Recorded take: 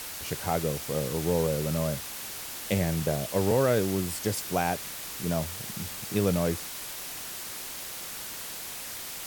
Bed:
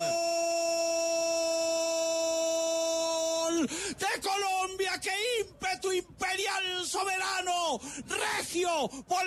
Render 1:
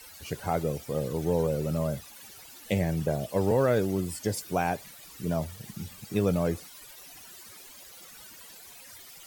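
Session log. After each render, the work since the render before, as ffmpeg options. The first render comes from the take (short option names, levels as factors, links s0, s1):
-af "afftdn=nr=15:nf=-39"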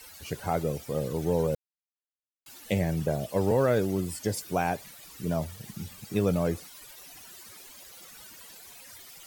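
-filter_complex "[0:a]asplit=3[s0][s1][s2];[s0]atrim=end=1.55,asetpts=PTS-STARTPTS,afade=t=out:st=1.546:d=0.004:c=hsin[s3];[s1]atrim=start=1.55:end=2.46,asetpts=PTS-STARTPTS,volume=0[s4];[s2]atrim=start=2.46,asetpts=PTS-STARTPTS,afade=t=in:d=0.004:c=hsin[s5];[s3][s4][s5]concat=n=3:v=0:a=1"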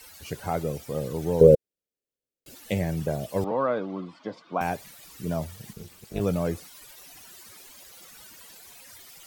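-filter_complex "[0:a]asettb=1/sr,asplit=3[s0][s1][s2];[s0]atrim=end=1.414[s3];[s1]atrim=start=1.41:end=2.55,asetpts=PTS-STARTPTS,afade=t=in:d=0.004:c=qsin,afade=t=out:st=1.136:d=0.004:c=qsin,lowshelf=f=670:t=q:w=3:g=10[s4];[s2]atrim=start=2.546[s5];[s3][s4]acrossfade=d=0.004:c1=hsin:c2=qsin[s6];[s6][s5]acrossfade=d=0.004:c1=qsin:c2=hsin,asettb=1/sr,asplit=3[s7][s8][s9];[s7]atrim=end=3.444[s10];[s8]atrim=start=3.44:end=4.61,asetpts=PTS-STARTPTS,afade=t=in:d=0.004:c=qsin,afade=t=out:st=1.166:d=0.004:c=qsin,highpass=f=190:w=0.5412,highpass=f=190:w=1.3066,equalizer=f=210:t=q:w=4:g=-4,equalizer=f=400:t=q:w=4:g=-9,equalizer=f=1100:t=q:w=4:g=10,equalizer=f=1800:t=q:w=4:g=-8,equalizer=f=2700:t=q:w=4:g=-7,lowpass=f=3300:w=0.5412,lowpass=f=3300:w=1.3066[s11];[s9]atrim=start=4.606[s12];[s10][s11]acrossfade=d=0.004:c1=hsin:c2=qsin[s13];[s13][s12]acrossfade=d=0.004:c1=qsin:c2=hsin,asettb=1/sr,asplit=3[s14][s15][s16];[s14]atrim=end=5.734[s17];[s15]atrim=start=5.73:end=6.21,asetpts=PTS-STARTPTS,afade=t=in:d=0.004:c=qsin,afade=t=out:st=0.476:d=0.004:c=qsin,tremolo=f=260:d=0.974[s18];[s16]atrim=start=6.206[s19];[s17][s18]acrossfade=d=0.004:c1=hsin:c2=qsin[s20];[s20][s19]acrossfade=d=0.004:c1=qsin:c2=hsin"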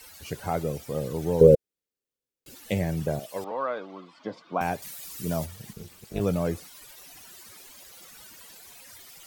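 -filter_complex "[0:a]asettb=1/sr,asplit=3[s0][s1][s2];[s0]atrim=end=1.374[s3];[s1]atrim=start=1.37:end=2.63,asetpts=PTS-STARTPTS,afade=t=in:d=0.004:c=qsin,afade=t=out:st=1.256:d=0.004:c=qsin,bandreject=f=640:w=5.7[s4];[s2]atrim=start=2.626[s5];[s3][s4]acrossfade=d=0.004:c1=hsin:c2=qsin[s6];[s6][s5]acrossfade=d=0.004:c1=qsin:c2=hsin,asettb=1/sr,asplit=3[s7][s8][s9];[s7]atrim=end=3.194[s10];[s8]atrim=start=3.19:end=4.18,asetpts=PTS-STARTPTS,afade=t=in:d=0.004:c=qsin,afade=t=out:st=0.986:d=0.004:c=qsin,highpass=f=860:p=1[s11];[s9]atrim=start=4.176[s12];[s10][s11]acrossfade=d=0.004:c1=hsin:c2=qsin[s13];[s13][s12]acrossfade=d=0.004:c1=qsin:c2=hsin,asettb=1/sr,asplit=3[s14][s15][s16];[s14]atrim=end=4.824[s17];[s15]atrim=start=4.82:end=5.46,asetpts=PTS-STARTPTS,afade=t=in:d=0.004:c=qsin,afade=t=out:st=0.636:d=0.004:c=qsin,highshelf=f=4300:g=9.5[s18];[s16]atrim=start=5.456[s19];[s17][s18]acrossfade=d=0.004:c1=hsin:c2=qsin[s20];[s20][s19]acrossfade=d=0.004:c1=qsin:c2=hsin"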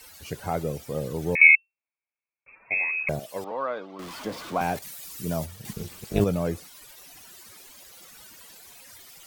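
-filter_complex "[0:a]asettb=1/sr,asplit=3[s0][s1][s2];[s0]atrim=end=1.354[s3];[s1]atrim=start=1.35:end=3.09,asetpts=PTS-STARTPTS,afade=t=in:d=0.004:c=qsin,afade=t=out:st=1.736:d=0.004:c=qsin,lowpass=f=2300:t=q:w=0.5098,lowpass=f=2300:t=q:w=0.6013,lowpass=f=2300:t=q:w=0.9,lowpass=f=2300:t=q:w=2.563,afreqshift=-2700[s4];[s2]atrim=start=3.086[s5];[s3][s4]acrossfade=d=0.004:c1=hsin:c2=qsin[s6];[s6][s5]acrossfade=d=0.004:c1=qsin:c2=hsin,asettb=1/sr,asplit=3[s7][s8][s9];[s7]atrim=end=3.994[s10];[s8]atrim=start=3.99:end=4.79,asetpts=PTS-STARTPTS,afade=t=in:d=0.004:c=qsin,afade=t=out:st=0.796:d=0.004:c=qsin,aeval=exprs='val(0)+0.5*0.0178*sgn(val(0))':c=same[s11];[s9]atrim=start=4.786[s12];[s10][s11]acrossfade=d=0.004:c1=hsin:c2=qsin[s13];[s13][s12]acrossfade=d=0.004:c1=qsin:c2=hsin,asplit=3[s14][s15][s16];[s14]atrim=end=5.652[s17];[s15]atrim=start=5.648:end=6.242,asetpts=PTS-STARTPTS,volume=2.24[s18];[s16]atrim=start=6.238[s19];[s17][s18]acrossfade=d=0.004:c1=hsin:c2=hsin[s20];[s20][s19]acrossfade=d=0.004:c1=hsin:c2=hsin"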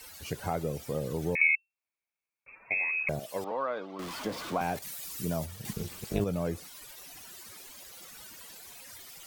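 -af "acompressor=threshold=0.0316:ratio=2"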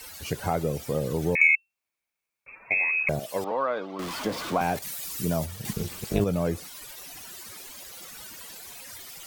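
-af "acontrast=35"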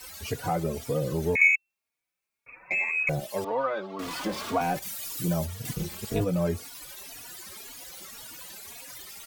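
-filter_complex "[0:a]asplit=2[s0][s1];[s1]asoftclip=type=tanh:threshold=0.0891,volume=0.299[s2];[s0][s2]amix=inputs=2:normalize=0,asplit=2[s3][s4];[s4]adelay=3.5,afreqshift=1.9[s5];[s3][s5]amix=inputs=2:normalize=1"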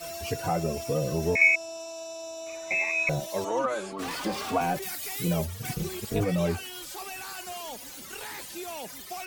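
-filter_complex "[1:a]volume=0.335[s0];[0:a][s0]amix=inputs=2:normalize=0"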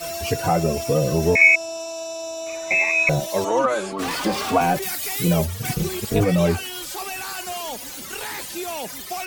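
-af "volume=2.51,alimiter=limit=0.708:level=0:latency=1"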